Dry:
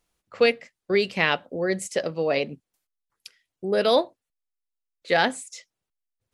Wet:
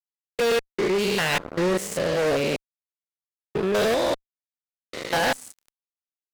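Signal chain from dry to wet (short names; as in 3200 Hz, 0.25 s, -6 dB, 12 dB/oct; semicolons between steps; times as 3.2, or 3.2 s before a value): stepped spectrum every 0.2 s; fuzz box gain 32 dB, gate -40 dBFS; gain -6 dB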